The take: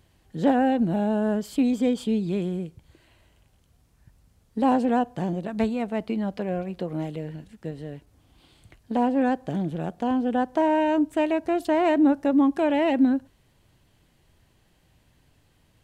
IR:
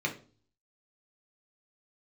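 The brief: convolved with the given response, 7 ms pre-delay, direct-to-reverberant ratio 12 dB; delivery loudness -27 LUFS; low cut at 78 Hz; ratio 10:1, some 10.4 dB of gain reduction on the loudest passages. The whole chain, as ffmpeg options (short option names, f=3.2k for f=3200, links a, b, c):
-filter_complex "[0:a]highpass=78,acompressor=threshold=-26dB:ratio=10,asplit=2[a][b];[1:a]atrim=start_sample=2205,adelay=7[c];[b][c]afir=irnorm=-1:irlink=0,volume=-19dB[d];[a][d]amix=inputs=2:normalize=0,volume=4.5dB"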